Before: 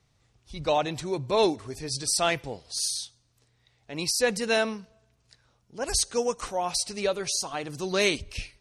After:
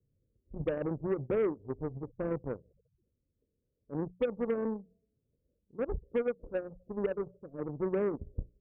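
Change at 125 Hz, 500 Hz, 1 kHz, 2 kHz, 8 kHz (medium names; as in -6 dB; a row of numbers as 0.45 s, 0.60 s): -2.0 dB, -5.0 dB, -15.5 dB, -17.0 dB, under -40 dB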